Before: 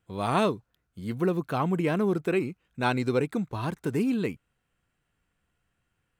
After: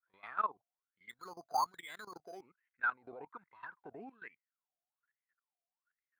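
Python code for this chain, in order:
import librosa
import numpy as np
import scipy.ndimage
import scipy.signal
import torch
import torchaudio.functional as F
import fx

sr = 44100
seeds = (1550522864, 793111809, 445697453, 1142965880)

p1 = fx.rider(x, sr, range_db=4, speed_s=0.5)
p2 = x + (p1 * 10.0 ** (-1.5 / 20.0))
p3 = fx.wah_lfo(p2, sr, hz=1.2, low_hz=670.0, high_hz=2100.0, q=21.0)
p4 = fx.resample_bad(p3, sr, factor=8, down='filtered', up='hold', at=(1.09, 2.41))
p5 = fx.high_shelf(p4, sr, hz=6000.0, db=-10.0)
p6 = fx.level_steps(p5, sr, step_db=18)
p7 = fx.peak_eq(p6, sr, hz=960.0, db=11.5, octaves=0.3, at=(3.16, 3.79))
y = p7 * 10.0 ** (6.0 / 20.0)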